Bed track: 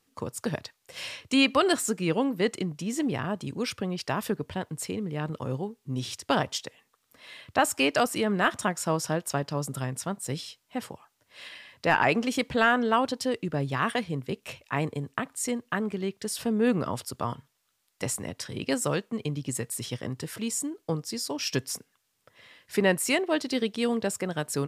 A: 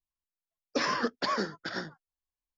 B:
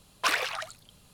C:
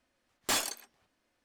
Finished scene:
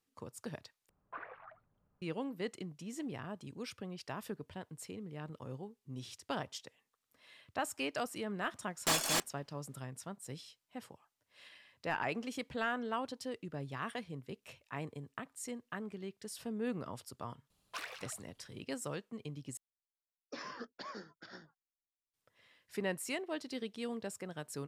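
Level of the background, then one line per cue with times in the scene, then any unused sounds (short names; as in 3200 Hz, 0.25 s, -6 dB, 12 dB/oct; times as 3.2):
bed track -13.5 dB
0.89 replace with B -17 dB + LPF 1600 Hz 24 dB/oct
8.38 add C -2 dB + reverse delay 0.654 s, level -1.5 dB
17.5 add B -17.5 dB
19.57 replace with A -16.5 dB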